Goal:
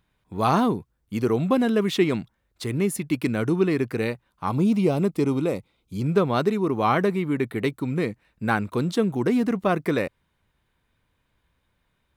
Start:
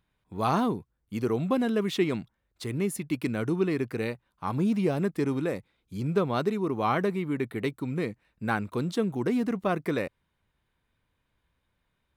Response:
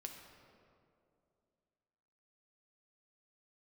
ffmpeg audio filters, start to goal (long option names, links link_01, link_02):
-filter_complex "[0:a]asettb=1/sr,asplit=3[link_01][link_02][link_03];[link_01]atrim=end=4.494[link_04];[link_02]atrim=start=4.49:end=6.01,asetpts=PTS-STARTPTS,afade=type=in:duration=0.004:curve=qsin,afade=type=out:start_time=1.516:duration=0.004:curve=qsin,equalizer=frequency=1700:width_type=o:width=0.27:gain=-14.5[link_05];[link_03]atrim=start=6.006[link_06];[link_04][link_05]acrossfade=duration=0.004:curve1=hsin:curve2=qsin[link_07];[link_07][link_06]acrossfade=duration=0.004:curve1=qsin:curve2=hsin,volume=5dB"